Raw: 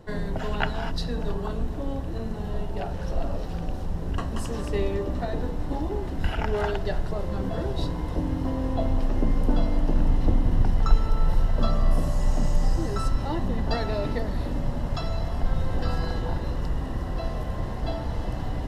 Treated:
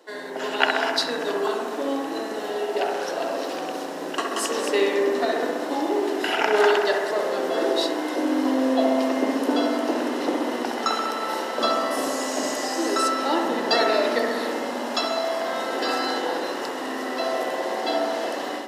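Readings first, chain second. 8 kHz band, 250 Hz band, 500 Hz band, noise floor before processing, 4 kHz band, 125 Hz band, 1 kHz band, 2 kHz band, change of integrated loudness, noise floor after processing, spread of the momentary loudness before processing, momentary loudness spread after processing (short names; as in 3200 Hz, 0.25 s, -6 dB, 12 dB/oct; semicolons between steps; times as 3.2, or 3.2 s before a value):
n/a, +4.5 dB, +9.5 dB, -31 dBFS, +12.5 dB, under -25 dB, +10.0 dB, +12.0 dB, +4.5 dB, -31 dBFS, 7 LU, 8 LU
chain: steep high-pass 290 Hz 36 dB/oct; high shelf 4300 Hz -8.5 dB; on a send: analogue delay 65 ms, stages 1024, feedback 75%, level -4 dB; on the sum: AGC gain up to 8 dB; EQ curve 560 Hz 0 dB, 1200 Hz +2 dB, 6700 Hz +14 dB; gain -1.5 dB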